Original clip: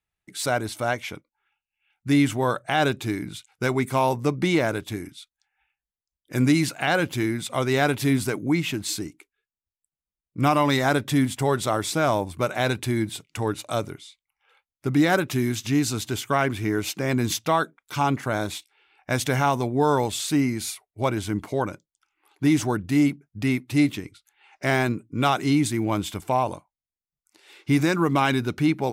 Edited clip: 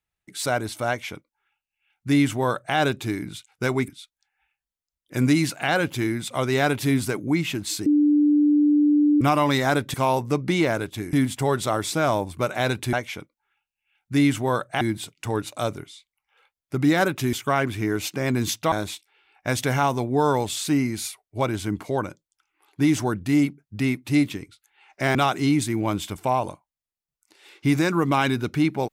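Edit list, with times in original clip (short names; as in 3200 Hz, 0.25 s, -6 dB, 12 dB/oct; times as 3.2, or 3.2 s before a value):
0.88–2.76 copy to 12.93
3.88–5.07 move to 11.13
9.05–10.4 bleep 295 Hz -14.5 dBFS
15.45–16.16 cut
17.55–18.35 cut
24.78–25.19 cut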